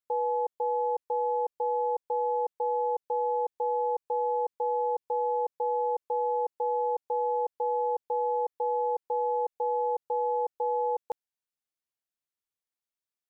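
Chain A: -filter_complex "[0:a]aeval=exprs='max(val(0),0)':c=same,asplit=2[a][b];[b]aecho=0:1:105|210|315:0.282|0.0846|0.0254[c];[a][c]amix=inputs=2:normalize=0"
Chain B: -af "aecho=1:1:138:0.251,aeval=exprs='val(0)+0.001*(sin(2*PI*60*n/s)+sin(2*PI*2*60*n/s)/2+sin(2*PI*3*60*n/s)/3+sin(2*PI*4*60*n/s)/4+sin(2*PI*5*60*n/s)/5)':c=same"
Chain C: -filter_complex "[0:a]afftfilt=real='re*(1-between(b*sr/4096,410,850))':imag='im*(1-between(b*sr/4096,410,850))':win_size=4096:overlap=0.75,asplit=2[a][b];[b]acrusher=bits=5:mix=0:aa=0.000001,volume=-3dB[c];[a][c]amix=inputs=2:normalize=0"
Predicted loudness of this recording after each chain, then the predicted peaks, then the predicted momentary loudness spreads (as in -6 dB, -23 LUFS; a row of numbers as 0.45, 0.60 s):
-34.5, -30.0, -28.0 LUFS; -22.0, -21.5, -23.5 dBFS; 1, 1, 1 LU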